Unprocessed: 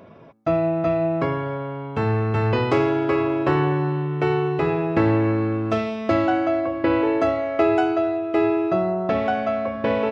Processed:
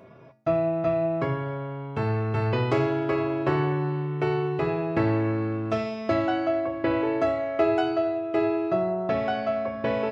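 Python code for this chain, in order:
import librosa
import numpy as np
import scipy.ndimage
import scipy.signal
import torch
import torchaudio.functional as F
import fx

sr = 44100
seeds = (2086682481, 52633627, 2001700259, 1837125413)

y = fx.comb_fb(x, sr, f0_hz=130.0, decay_s=0.42, harmonics='odd', damping=0.0, mix_pct=80)
y = y * librosa.db_to_amplitude(7.5)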